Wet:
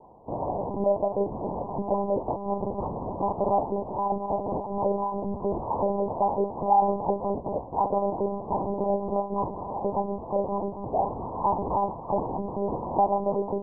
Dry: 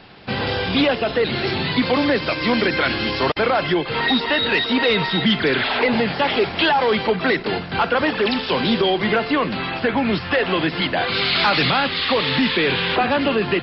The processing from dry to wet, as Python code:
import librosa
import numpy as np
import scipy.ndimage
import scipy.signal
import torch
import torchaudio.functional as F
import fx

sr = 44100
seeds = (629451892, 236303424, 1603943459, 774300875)

y = fx.room_flutter(x, sr, wall_m=5.5, rt60_s=0.26)
y = fx.lpc_monotone(y, sr, seeds[0], pitch_hz=200.0, order=8)
y = scipy.signal.sosfilt(scipy.signal.butter(16, 1000.0, 'lowpass', fs=sr, output='sos'), y)
y = fx.tilt_eq(y, sr, slope=4.0)